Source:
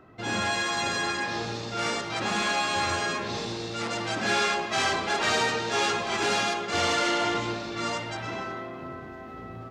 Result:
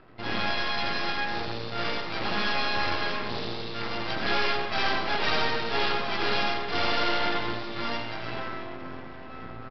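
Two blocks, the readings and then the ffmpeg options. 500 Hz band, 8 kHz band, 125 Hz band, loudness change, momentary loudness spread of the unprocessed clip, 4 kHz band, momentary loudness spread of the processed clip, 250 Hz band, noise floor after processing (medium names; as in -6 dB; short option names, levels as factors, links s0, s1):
-1.5 dB, -19.5 dB, -1.5 dB, -1.5 dB, 11 LU, -0.5 dB, 10 LU, -2.0 dB, -40 dBFS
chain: -af "aresample=11025,aeval=exprs='max(val(0),0)':c=same,aresample=44100,aecho=1:1:85:0.376,volume=1.41"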